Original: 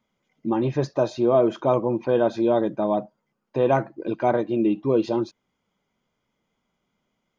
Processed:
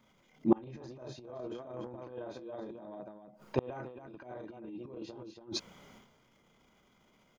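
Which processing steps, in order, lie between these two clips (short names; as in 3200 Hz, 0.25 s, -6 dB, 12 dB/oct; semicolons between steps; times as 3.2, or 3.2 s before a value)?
loudspeakers at several distances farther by 11 m -2 dB, 97 m -6 dB; transient shaper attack -10 dB, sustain +12 dB; flipped gate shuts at -19 dBFS, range -32 dB; gain +5.5 dB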